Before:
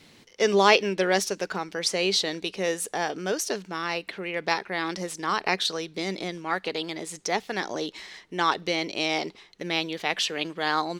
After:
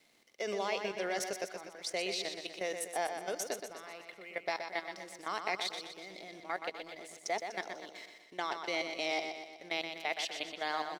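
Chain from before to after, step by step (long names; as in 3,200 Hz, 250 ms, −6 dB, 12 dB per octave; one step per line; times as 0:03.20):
high-pass filter 250 Hz 12 dB per octave
high-shelf EQ 4,800 Hz +3.5 dB
output level in coarse steps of 14 dB
hollow resonant body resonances 670/2,100 Hz, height 9 dB, ringing for 20 ms
dead-zone distortion −57.5 dBFS
on a send: repeating echo 123 ms, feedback 52%, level −7 dB
on the sum: level −9 dB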